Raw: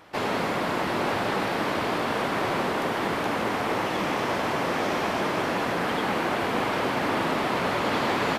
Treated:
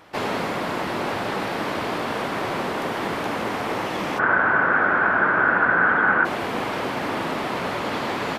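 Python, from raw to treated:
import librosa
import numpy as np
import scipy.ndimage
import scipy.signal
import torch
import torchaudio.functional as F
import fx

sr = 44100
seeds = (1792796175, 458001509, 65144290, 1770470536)

y = fx.rider(x, sr, range_db=10, speed_s=0.5)
y = fx.lowpass_res(y, sr, hz=1500.0, q=11.0, at=(4.18, 6.24), fade=0.02)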